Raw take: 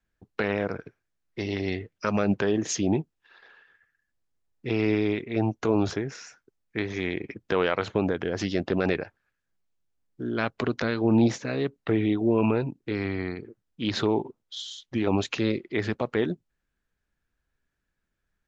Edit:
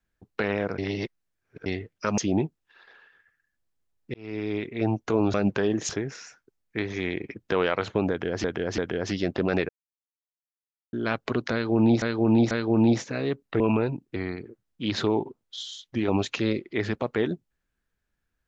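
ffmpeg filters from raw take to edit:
-filter_complex "[0:a]asplit=15[a][b][c][d][e][f][g][h][i][j][k][l][m][n][o];[a]atrim=end=0.782[p];[b]atrim=start=0.778:end=1.662,asetpts=PTS-STARTPTS,areverse[q];[c]atrim=start=1.658:end=2.182[r];[d]atrim=start=2.728:end=4.69,asetpts=PTS-STARTPTS,afade=t=out:st=1.958:d=0.004:c=hsin[s];[e]atrim=start=4.69:end=5.892,asetpts=PTS-STARTPTS,afade=t=in:d=0.6[t];[f]atrim=start=2.178:end=2.732[u];[g]atrim=start=5.888:end=8.442[v];[h]atrim=start=8.098:end=8.442[w];[i]atrim=start=8.098:end=9.01,asetpts=PTS-STARTPTS,afade=t=out:st=0.908:d=0.004:c=hsin[x];[j]atrim=start=9.01:end=10.25,asetpts=PTS-STARTPTS,volume=0[y];[k]atrim=start=10.25:end=11.342,asetpts=PTS-STARTPTS,afade=t=in:d=0.004:c=hsin[z];[l]atrim=start=10.848:end=11.342[aa];[m]atrim=start=10.848:end=11.942[ab];[n]atrim=start=12.338:end=12.902[ac];[o]atrim=start=13.148[ad];[p][q]acrossfade=d=0.004:c1=hsin:c2=hsin[ae];[ae][r]acrossfade=d=0.004:c1=hsin:c2=hsin[af];[s][t]concat=n=2:v=0:a=1[ag];[af][ag]acrossfade=d=0.004:c1=hsin:c2=hsin[ah];[ah][u]acrossfade=d=0.004:c1=hsin:c2=hsin[ai];[ai][v]acrossfade=d=0.004:c1=hsin:c2=hsin[aj];[aj][w]acrossfade=d=0.004:c1=hsin:c2=hsin[ak];[x][y][z]concat=n=3:v=0:a=1[al];[ak][al]acrossfade=d=0.004:c1=hsin:c2=hsin[am];[am][aa]acrossfade=d=0.004:c1=hsin:c2=hsin[an];[an][ab]acrossfade=d=0.004:c1=hsin:c2=hsin[ao];[ao][ac]acrossfade=d=0.004:c1=hsin:c2=hsin[ap];[ap][ad]acrossfade=d=0.004:c1=hsin:c2=hsin"

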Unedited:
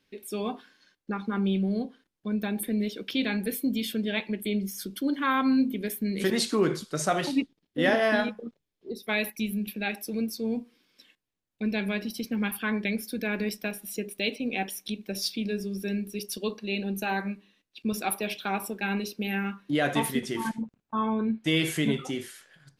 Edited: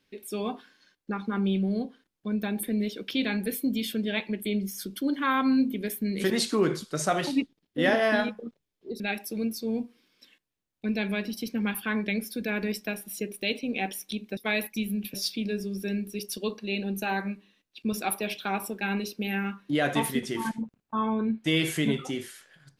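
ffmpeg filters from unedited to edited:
-filter_complex "[0:a]asplit=4[a][b][c][d];[a]atrim=end=9.002[e];[b]atrim=start=9.768:end=15.142[f];[c]atrim=start=8.998:end=9.772[g];[d]atrim=start=15.138[h];[e][f]acrossfade=d=0.004:c1=hsin:c2=hsin[i];[i][g]acrossfade=d=0.004:c1=hsin:c2=hsin[j];[j][h]acrossfade=d=0.004:c1=hsin:c2=hsin"

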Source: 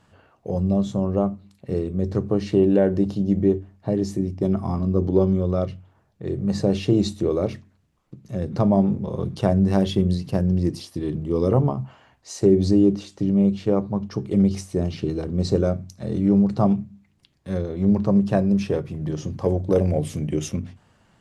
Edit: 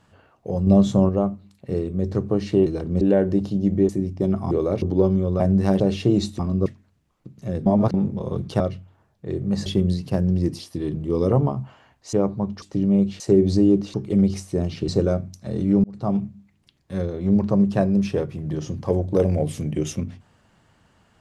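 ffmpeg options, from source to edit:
-filter_complex "[0:a]asplit=22[a][b][c][d][e][f][g][h][i][j][k][l][m][n][o][p][q][r][s][t][u][v];[a]atrim=end=0.672[w];[b]atrim=start=0.668:end=1.092,asetpts=PTS-STARTPTS,volume=6dB[x];[c]atrim=start=1.088:end=2.662[y];[d]atrim=start=15.088:end=15.442[z];[e]atrim=start=2.658:end=3.542[aa];[f]atrim=start=4.098:end=4.722[ab];[g]atrim=start=7.218:end=7.532[ac];[h]atrim=start=4.988:end=5.572[ad];[i]atrim=start=9.468:end=9.872[ae];[j]atrim=start=6.628:end=7.222[af];[k]atrim=start=4.718:end=4.992[ag];[l]atrim=start=7.528:end=8.532[ah];[m]atrim=start=8.528:end=8.812,asetpts=PTS-STARTPTS,areverse[ai];[n]atrim=start=8.808:end=9.472[aj];[o]atrim=start=5.568:end=6.632[ak];[p]atrim=start=9.868:end=12.342[al];[q]atrim=start=13.658:end=14.152[am];[r]atrim=start=13.078:end=13.662[an];[s]atrim=start=12.338:end=13.082[ao];[t]atrim=start=14.148:end=15.092[ap];[u]atrim=start=15.438:end=16.4,asetpts=PTS-STARTPTS,afade=t=out:st=0.958:d=0.004:c=hsin[aq];[v]atrim=start=16.4,asetpts=PTS-STARTPTS,afade=t=in:d=0.42[ar];[w][x]acrossfade=d=0.004:c1=hsin:c2=hsin[as];[as][y]acrossfade=d=0.004:c1=hsin:c2=hsin[at];[at][z]acrossfade=d=0.004:c1=hsin:c2=hsin[au];[au][aa]acrossfade=d=0.004:c1=hsin:c2=hsin[av];[av][ab]acrossfade=d=0.004:c1=hsin:c2=hsin[aw];[aw][ac]acrossfade=d=0.004:c1=hsin:c2=hsin[ax];[ax][ad]acrossfade=d=0.004:c1=hsin:c2=hsin[ay];[ay][ae]acrossfade=d=0.004:c1=hsin:c2=hsin[az];[az][af]acrossfade=d=0.004:c1=hsin:c2=hsin[ba];[ba][ag]acrossfade=d=0.004:c1=hsin:c2=hsin[bb];[bb][ah]acrossfade=d=0.004:c1=hsin:c2=hsin[bc];[bc][ai]acrossfade=d=0.004:c1=hsin:c2=hsin[bd];[bd][aj]acrossfade=d=0.004:c1=hsin:c2=hsin[be];[be][ak]acrossfade=d=0.004:c1=hsin:c2=hsin[bf];[bf][al]acrossfade=d=0.004:c1=hsin:c2=hsin[bg];[bg][am]acrossfade=d=0.004:c1=hsin:c2=hsin[bh];[bh][an]acrossfade=d=0.004:c1=hsin:c2=hsin[bi];[bi][ao]acrossfade=d=0.004:c1=hsin:c2=hsin[bj];[bj][ap]acrossfade=d=0.004:c1=hsin:c2=hsin[bk];[aq][ar]concat=n=2:v=0:a=1[bl];[bk][bl]acrossfade=d=0.004:c1=hsin:c2=hsin"

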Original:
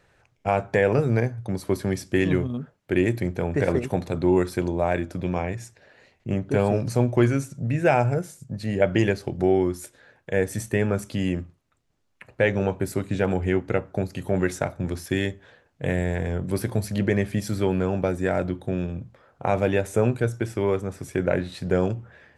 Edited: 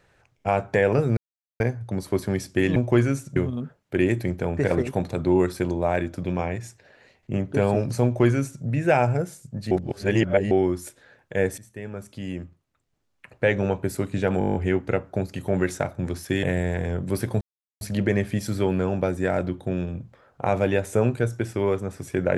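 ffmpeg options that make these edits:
-filter_complex "[0:a]asplit=17[a][b][c][d][e][f][g][h][i][j][k][l][m][n][o][p][q];[a]atrim=end=1.17,asetpts=PTS-STARTPTS,afade=t=out:st=1.166:d=0.004:c=hsin,apad=pad_dur=0.43[r];[b]atrim=start=1.17:end=2.332,asetpts=PTS-STARTPTS,afade=t=in:d=0.004:c=hsin[s];[c]atrim=start=7.008:end=7.612[t];[d]atrim=start=2.328:end=8.682[u];[e]atrim=start=8.678:end=9.482,asetpts=PTS-STARTPTS,areverse[v];[f]atrim=start=9.478:end=10.55,asetpts=PTS-STARTPTS,afade=t=out:st=1.068:d=0.004:c=hsin:silence=0.1[w];[g]atrim=start=10.55:end=13.382,asetpts=PTS-STARTPTS,afade=t=in:d=1.88:silence=0.1[x];[h]atrim=start=13.358:end=13.382[y];[i]atrim=start=13.358:end=13.382[z];[j]atrim=start=13.358:end=13.382[aa];[k]atrim=start=13.358:end=13.382[ab];[l]atrim=start=13.358:end=13.382[ac];[m]atrim=start=13.358:end=13.382[ad];[n]atrim=start=13.358:end=13.382[ae];[o]atrim=start=13.358:end=15.242[af];[p]atrim=start=15.838:end=16.82,asetpts=PTS-STARTPTS,afade=t=out:st=0.978:d=0.004:c=hsin,apad=pad_dur=0.4[ag];[q]atrim=start=16.82,asetpts=PTS-STARTPTS,afade=t=in:d=0.004:c=hsin[ah];[r][s]concat=n=2:v=0:a=1[ai];[ai][t]acrossfade=d=0.004:c1=hsin:c2=hsin[aj];[aj][u]acrossfade=d=0.004:c1=hsin:c2=hsin[ak];[ak][v]acrossfade=d=0.004:c1=hsin:c2=hsin[al];[w][x]concat=n=2:v=0:a=1[am];[al][am]acrossfade=d=0.004:c1=hsin:c2=hsin[an];[an][y]acrossfade=d=0.004:c1=hsin:c2=hsin[ao];[ao][z]acrossfade=d=0.004:c1=hsin:c2=hsin[ap];[ap][aa]acrossfade=d=0.004:c1=hsin:c2=hsin[aq];[aq][ab]acrossfade=d=0.004:c1=hsin:c2=hsin[ar];[ar][ac]acrossfade=d=0.004:c1=hsin:c2=hsin[as];[as][ad]acrossfade=d=0.004:c1=hsin:c2=hsin[at];[at][ae]acrossfade=d=0.004:c1=hsin:c2=hsin[au];[au][af]acrossfade=d=0.004:c1=hsin:c2=hsin[av];[ag][ah]concat=n=2:v=0:a=1[aw];[av][aw]acrossfade=d=0.004:c1=hsin:c2=hsin"

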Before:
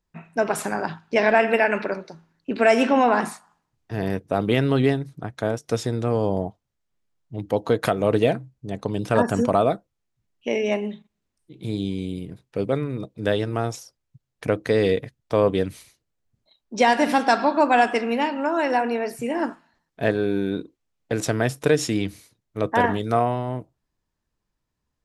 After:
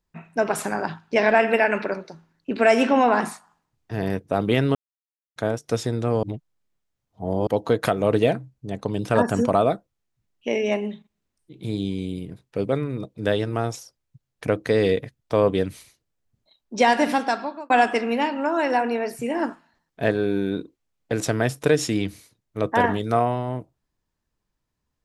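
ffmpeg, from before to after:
-filter_complex "[0:a]asplit=6[a][b][c][d][e][f];[a]atrim=end=4.75,asetpts=PTS-STARTPTS,afade=t=out:st=4.746:d=0.004:c=hsin[g];[b]atrim=start=4.75:end=5.36,asetpts=PTS-STARTPTS,volume=0[h];[c]atrim=start=5.36:end=6.232,asetpts=PTS-STARTPTS,afade=t=in:d=0.004:c=hsin[i];[d]atrim=start=6.228:end=7.472,asetpts=PTS-STARTPTS,areverse[j];[e]atrim=start=7.468:end=17.7,asetpts=PTS-STARTPTS,afade=t=out:st=9.532:d=0.7[k];[f]atrim=start=17.7,asetpts=PTS-STARTPTS,afade=t=in:d=0.004:c=hsin[l];[g][h][i]concat=n=3:v=0:a=1[m];[m][j]acrossfade=d=0.004:c1=hsin:c2=hsin[n];[k][l]concat=n=2:v=0:a=1[o];[n][o]acrossfade=d=0.004:c1=hsin:c2=hsin"

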